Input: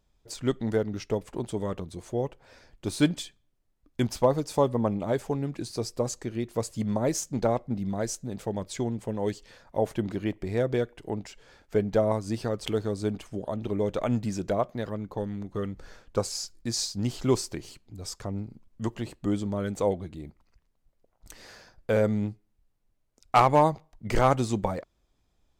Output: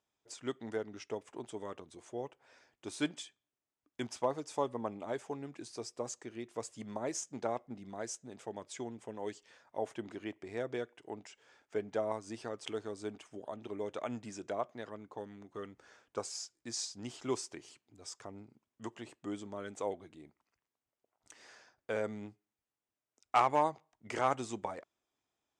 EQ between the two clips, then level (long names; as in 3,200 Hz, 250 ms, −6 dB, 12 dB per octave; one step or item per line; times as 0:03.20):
loudspeaker in its box 130–9,000 Hz, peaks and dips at 180 Hz −8 dB, 530 Hz −4 dB, 4,300 Hz −7 dB
low-shelf EQ 240 Hz −11 dB
−6.5 dB